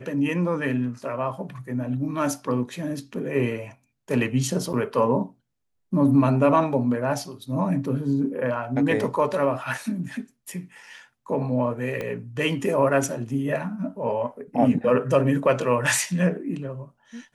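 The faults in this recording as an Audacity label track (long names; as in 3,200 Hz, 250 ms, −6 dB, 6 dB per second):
4.730000	4.740000	drop-out 7.5 ms
12.010000	12.010000	click −17 dBFS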